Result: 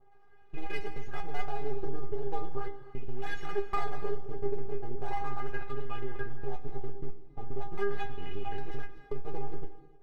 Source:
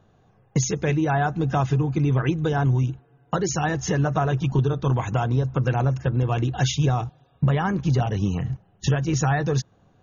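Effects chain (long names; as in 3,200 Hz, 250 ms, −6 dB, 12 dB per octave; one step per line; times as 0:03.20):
slices reordered back to front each 134 ms, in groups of 4
harmonic and percussive parts rebalanced harmonic +7 dB
downward compressor 6 to 1, threshold −22 dBFS, peak gain reduction 11.5 dB
auto-filter low-pass sine 0.39 Hz 350–2,400 Hz
half-wave rectification
stiff-string resonator 400 Hz, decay 0.21 s, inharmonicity 0.002
reverb whose tail is shaped and stops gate 340 ms flat, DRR 9.5 dB
level +8 dB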